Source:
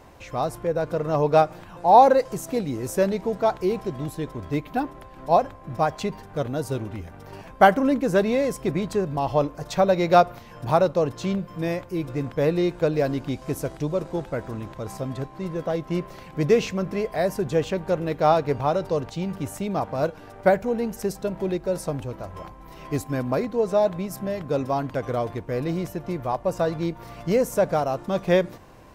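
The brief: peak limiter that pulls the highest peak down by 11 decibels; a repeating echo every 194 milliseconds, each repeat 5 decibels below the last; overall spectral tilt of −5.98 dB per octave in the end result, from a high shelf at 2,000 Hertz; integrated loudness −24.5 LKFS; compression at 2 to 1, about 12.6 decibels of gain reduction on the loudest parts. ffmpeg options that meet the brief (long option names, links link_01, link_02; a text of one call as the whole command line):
ffmpeg -i in.wav -af "highshelf=frequency=2000:gain=-4,acompressor=threshold=-33dB:ratio=2,alimiter=level_in=1.5dB:limit=-24dB:level=0:latency=1,volume=-1.5dB,aecho=1:1:194|388|582|776|970|1164|1358:0.562|0.315|0.176|0.0988|0.0553|0.031|0.0173,volume=9.5dB" out.wav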